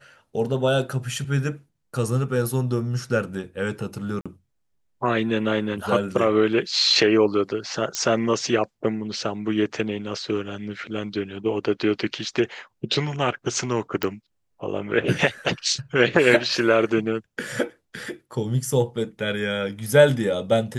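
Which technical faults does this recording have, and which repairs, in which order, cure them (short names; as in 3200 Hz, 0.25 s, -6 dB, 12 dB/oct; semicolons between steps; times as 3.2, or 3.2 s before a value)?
4.21–4.26 gap 46 ms
7.95 pop -10 dBFS
14.03 pop -10 dBFS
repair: de-click; interpolate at 4.21, 46 ms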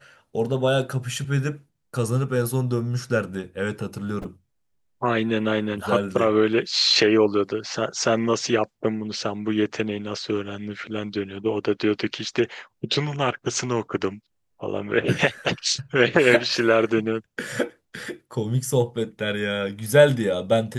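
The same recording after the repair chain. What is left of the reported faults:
none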